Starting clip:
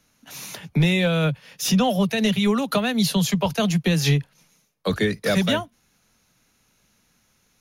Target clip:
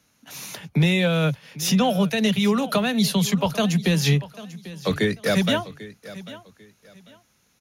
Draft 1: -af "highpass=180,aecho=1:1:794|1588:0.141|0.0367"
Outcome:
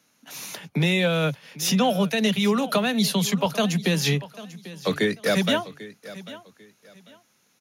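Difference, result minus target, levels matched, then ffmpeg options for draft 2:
125 Hz band -2.5 dB
-af "highpass=53,aecho=1:1:794|1588:0.141|0.0367"

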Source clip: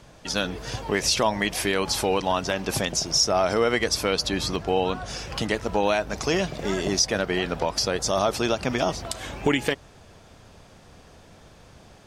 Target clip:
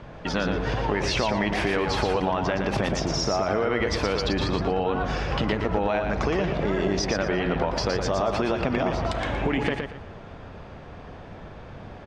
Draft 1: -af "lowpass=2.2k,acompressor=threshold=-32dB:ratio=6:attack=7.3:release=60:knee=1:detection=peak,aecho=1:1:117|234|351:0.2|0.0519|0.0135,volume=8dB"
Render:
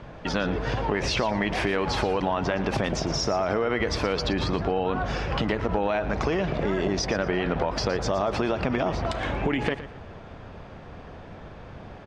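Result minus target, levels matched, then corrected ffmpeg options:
echo-to-direct -8.5 dB
-af "lowpass=2.2k,acompressor=threshold=-32dB:ratio=6:attack=7.3:release=60:knee=1:detection=peak,aecho=1:1:117|234|351:0.531|0.138|0.0359,volume=8dB"

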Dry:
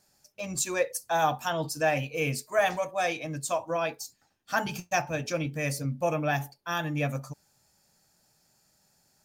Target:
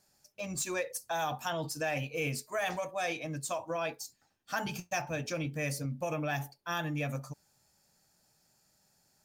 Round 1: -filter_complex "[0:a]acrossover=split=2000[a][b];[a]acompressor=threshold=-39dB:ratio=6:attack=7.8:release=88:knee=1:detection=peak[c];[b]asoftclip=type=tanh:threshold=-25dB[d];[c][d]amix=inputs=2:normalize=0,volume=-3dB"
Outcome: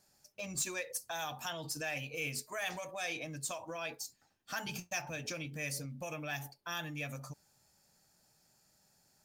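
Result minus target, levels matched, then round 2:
compressor: peak gain reduction +9 dB
-filter_complex "[0:a]acrossover=split=2000[a][b];[a]acompressor=threshold=-28.5dB:ratio=6:attack=7.8:release=88:knee=1:detection=peak[c];[b]asoftclip=type=tanh:threshold=-25dB[d];[c][d]amix=inputs=2:normalize=0,volume=-3dB"

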